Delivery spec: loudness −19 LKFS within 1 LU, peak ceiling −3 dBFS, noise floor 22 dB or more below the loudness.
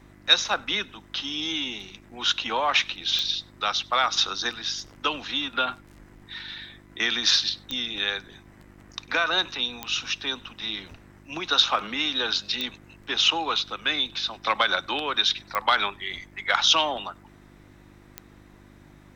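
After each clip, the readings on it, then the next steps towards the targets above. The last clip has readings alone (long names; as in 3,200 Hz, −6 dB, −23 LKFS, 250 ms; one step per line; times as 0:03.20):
number of clicks 6; mains hum 50 Hz; hum harmonics up to 350 Hz; level of the hum −50 dBFS; integrated loudness −24.5 LKFS; sample peak −4.5 dBFS; target loudness −19.0 LKFS
→ click removal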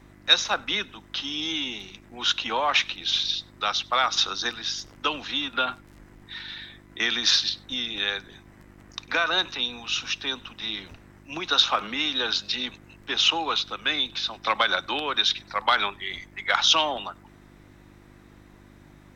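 number of clicks 0; mains hum 50 Hz; hum harmonics up to 350 Hz; level of the hum −50 dBFS
→ hum removal 50 Hz, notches 7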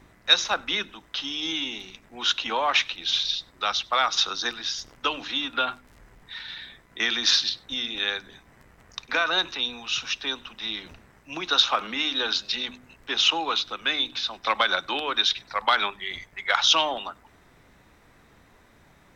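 mains hum none found; integrated loudness −24.5 LKFS; sample peak −4.0 dBFS; target loudness −19.0 LKFS
→ level +5.5 dB
brickwall limiter −3 dBFS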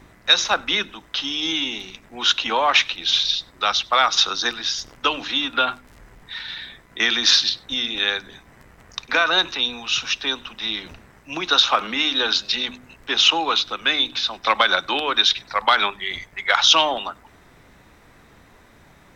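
integrated loudness −19.5 LKFS; sample peak −3.0 dBFS; background noise floor −52 dBFS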